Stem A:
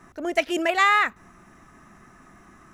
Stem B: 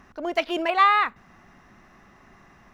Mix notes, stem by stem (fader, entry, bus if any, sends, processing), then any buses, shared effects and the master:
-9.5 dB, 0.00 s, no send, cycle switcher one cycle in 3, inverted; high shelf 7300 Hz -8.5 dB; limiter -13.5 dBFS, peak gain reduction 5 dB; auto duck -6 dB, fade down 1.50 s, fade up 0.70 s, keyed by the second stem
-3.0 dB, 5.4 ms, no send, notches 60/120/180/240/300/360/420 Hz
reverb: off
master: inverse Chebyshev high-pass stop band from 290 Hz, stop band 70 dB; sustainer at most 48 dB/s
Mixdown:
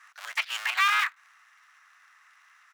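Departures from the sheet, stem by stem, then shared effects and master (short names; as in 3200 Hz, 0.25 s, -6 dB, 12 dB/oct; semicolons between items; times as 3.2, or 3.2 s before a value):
stem A -9.5 dB -> +2.0 dB; master: missing sustainer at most 48 dB/s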